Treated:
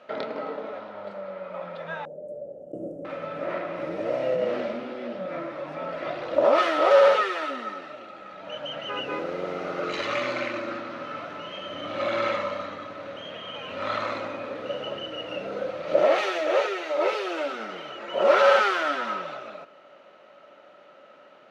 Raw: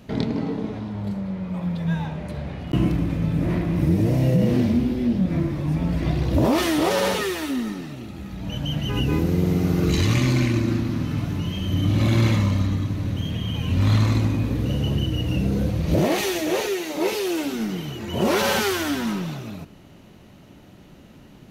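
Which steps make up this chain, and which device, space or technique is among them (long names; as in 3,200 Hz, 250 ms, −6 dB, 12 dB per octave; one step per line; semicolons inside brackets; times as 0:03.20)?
tin-can telephone (band-pass filter 670–2,900 Hz; hollow resonant body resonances 570/1,300 Hz, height 14 dB, ringing for 30 ms)
0:02.05–0:03.05: elliptic band-stop filter 530–8,000 Hz, stop band 40 dB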